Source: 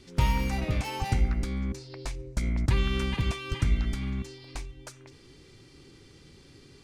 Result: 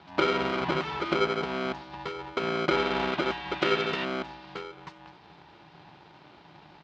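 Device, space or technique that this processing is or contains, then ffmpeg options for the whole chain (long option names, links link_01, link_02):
ring modulator pedal into a guitar cabinet: -filter_complex "[0:a]asplit=3[link_01][link_02][link_03];[link_01]afade=type=out:start_time=3.61:duration=0.02[link_04];[link_02]highshelf=frequency=1900:width_type=q:width=3:gain=8.5,afade=type=in:start_time=3.61:duration=0.02,afade=type=out:start_time=4.04:duration=0.02[link_05];[link_03]afade=type=in:start_time=4.04:duration=0.02[link_06];[link_04][link_05][link_06]amix=inputs=3:normalize=0,aecho=1:1:92|184|276|368:0.0794|0.0421|0.0223|0.0118,aeval=exprs='val(0)*sgn(sin(2*PI*450*n/s))':channel_layout=same,highpass=88,equalizer=frequency=160:width_type=q:width=4:gain=9,equalizer=frequency=520:width_type=q:width=4:gain=-10,equalizer=frequency=950:width_type=q:width=4:gain=9,lowpass=frequency=4000:width=0.5412,lowpass=frequency=4000:width=1.3066"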